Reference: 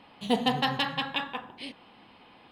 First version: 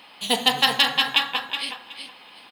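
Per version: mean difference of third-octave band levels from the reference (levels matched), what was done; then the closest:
7.5 dB: spectral tilt +4 dB per octave
on a send: repeating echo 371 ms, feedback 21%, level −8 dB
on the sum: level +5 dB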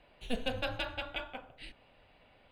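3.5 dB: parametric band 5,700 Hz −4 dB 0.21 octaves
frequency shifter −240 Hz
level −8 dB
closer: second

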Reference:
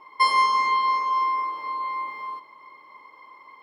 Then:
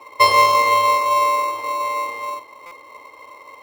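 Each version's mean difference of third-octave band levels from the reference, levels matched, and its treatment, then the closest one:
5.5 dB: Butterworth high-pass 230 Hz 72 dB per octave
in parallel at −8 dB: decimation without filtering 27×
on the sum: buffer that repeats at 0:02.66, samples 256, times 8
level +6 dB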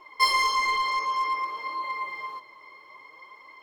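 3.5 dB: graphic EQ with 15 bands 250 Hz −9 dB, 1,000 Hz −7 dB, 6,300 Hz +5 dB
flanger 0.56 Hz, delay 2.8 ms, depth 7.4 ms, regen +31%
in parallel at −9.5 dB: wave folding −30.5 dBFS
on the sum: level +4.5 dB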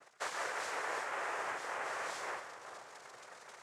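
15.0 dB: reversed playback
downward compressor 6 to 1, threshold −32 dBFS, peak gain reduction 16 dB
reversed playback
cochlear-implant simulation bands 3
echo with a time of its own for lows and highs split 1,200 Hz, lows 427 ms, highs 131 ms, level −10 dB
level −6.5 dB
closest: second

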